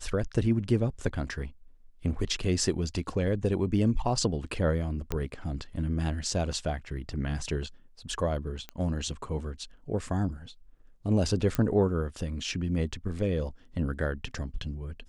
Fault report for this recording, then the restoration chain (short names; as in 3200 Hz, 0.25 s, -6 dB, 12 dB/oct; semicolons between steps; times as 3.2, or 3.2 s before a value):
5.12 pop -15 dBFS
8.69 pop -23 dBFS
11.55 pop -14 dBFS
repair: de-click